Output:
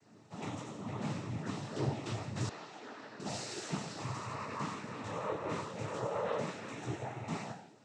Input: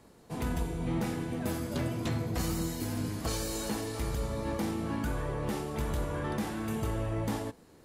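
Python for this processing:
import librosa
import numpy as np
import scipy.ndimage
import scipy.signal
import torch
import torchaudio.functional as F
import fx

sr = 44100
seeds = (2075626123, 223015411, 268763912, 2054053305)

y = fx.resonator_bank(x, sr, root=48, chord='fifth', decay_s=0.68)
y = fx.noise_vocoder(y, sr, seeds[0], bands=12)
y = fx.bandpass_edges(y, sr, low_hz=460.0, high_hz=2900.0, at=(2.49, 3.2))
y = F.gain(torch.from_numpy(y), 15.0).numpy()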